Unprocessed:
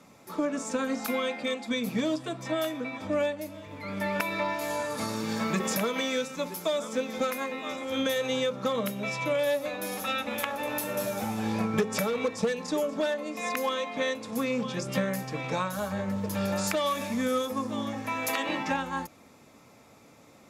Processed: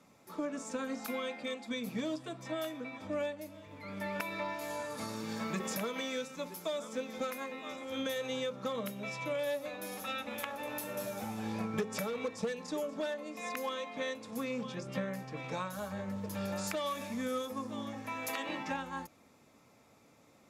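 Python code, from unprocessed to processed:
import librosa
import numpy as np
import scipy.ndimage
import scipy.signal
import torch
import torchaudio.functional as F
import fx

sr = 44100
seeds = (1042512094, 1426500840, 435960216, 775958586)

y = fx.high_shelf(x, sr, hz=5800.0, db=-10.5, at=(14.74, 15.37))
y = y * 10.0 ** (-8.0 / 20.0)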